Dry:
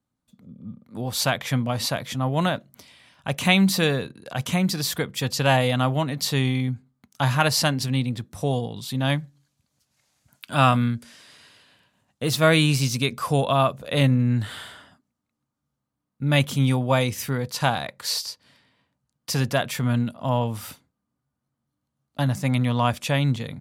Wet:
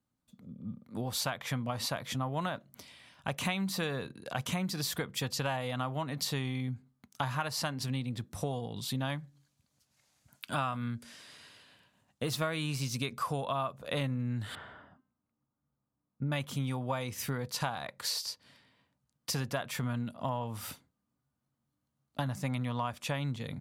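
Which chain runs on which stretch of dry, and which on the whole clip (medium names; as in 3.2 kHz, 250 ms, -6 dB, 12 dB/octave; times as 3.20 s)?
14.55–16.32 s: low-pass 1.4 kHz + de-hum 260.1 Hz, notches 28
whole clip: dynamic bell 1.1 kHz, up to +6 dB, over -37 dBFS, Q 1.2; compression 6:1, threshold -28 dBFS; trim -3 dB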